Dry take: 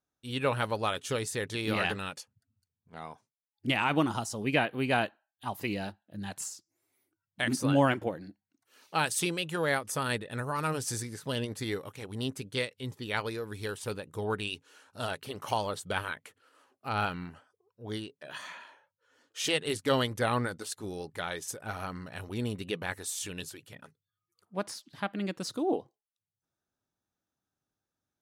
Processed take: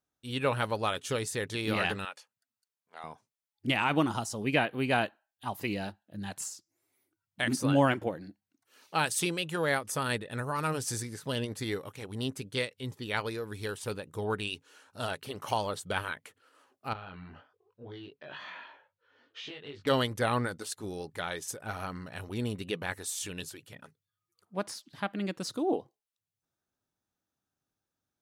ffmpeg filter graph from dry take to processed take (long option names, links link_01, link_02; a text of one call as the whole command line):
ffmpeg -i in.wav -filter_complex "[0:a]asettb=1/sr,asplit=3[link_01][link_02][link_03];[link_01]atrim=end=2.054[link_04];[link_02]atrim=start=2.05:end=3.04,asetpts=PTS-STARTPTS,afade=type=in:duration=0.004:curve=qsin,afade=type=out:start_time=0.986:duration=0.004:curve=qsin,highpass=630,acrossover=split=3200[link_05][link_06];[link_06]acompressor=threshold=-53dB:ratio=4:attack=1:release=60[link_07];[link_05][link_07]amix=inputs=2:normalize=0[link_08];[link_03]atrim=start=3.036[link_09];[link_04][link_08]acrossfade=duration=0.004:curve1=hsin:curve2=qsin[link_10];[link_10][link_09]acrossfade=duration=0.004:curve1=qsin:curve2=hsin,asettb=1/sr,asplit=3[link_11][link_12][link_13];[link_11]atrim=end=16.934[link_14];[link_12]atrim=start=16.93:end=19.87,asetpts=PTS-STARTPTS,afade=type=in:duration=0.004:curve=qsin,afade=type=out:start_time=2.936:duration=0.004:curve=qsin,lowpass=frequency=4100:width=0.5412,lowpass=frequency=4100:width=1.3066,acompressor=threshold=-41dB:ratio=16:attack=3.2:release=140:knee=1:detection=peak,asplit=2[link_15][link_16];[link_16]adelay=21,volume=-2.5dB[link_17];[link_15][link_17]amix=inputs=2:normalize=0,atrim=end_sample=129654[link_18];[link_13]atrim=start=19.866[link_19];[link_14][link_18]acrossfade=duration=0.004:curve1=hsin:curve2=qsin[link_20];[link_20][link_19]acrossfade=duration=0.004:curve1=qsin:curve2=hsin" out.wav